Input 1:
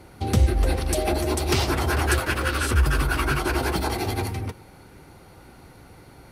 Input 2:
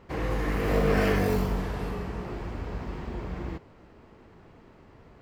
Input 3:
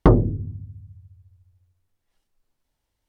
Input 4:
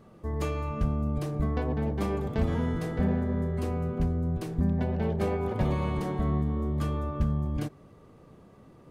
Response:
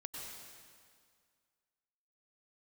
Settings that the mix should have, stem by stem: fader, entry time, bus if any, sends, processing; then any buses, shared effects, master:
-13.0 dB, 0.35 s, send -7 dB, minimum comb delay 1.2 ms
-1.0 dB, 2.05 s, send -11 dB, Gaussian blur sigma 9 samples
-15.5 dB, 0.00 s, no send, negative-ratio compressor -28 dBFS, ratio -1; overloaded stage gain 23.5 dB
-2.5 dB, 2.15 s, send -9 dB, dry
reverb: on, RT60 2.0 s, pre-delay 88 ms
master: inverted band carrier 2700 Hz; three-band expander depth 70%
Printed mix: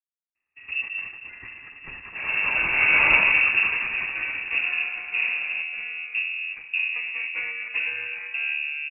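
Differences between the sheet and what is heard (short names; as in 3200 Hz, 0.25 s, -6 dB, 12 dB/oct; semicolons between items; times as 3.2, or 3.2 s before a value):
stem 2: missing Gaussian blur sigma 9 samples; stem 3: muted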